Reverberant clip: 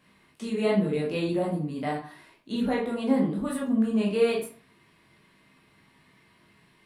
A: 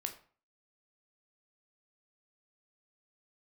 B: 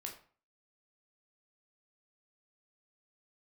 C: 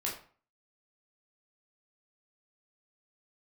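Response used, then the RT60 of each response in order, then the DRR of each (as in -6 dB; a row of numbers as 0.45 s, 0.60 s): C; 0.45 s, 0.45 s, 0.45 s; 5.0 dB, 1.0 dB, -4.0 dB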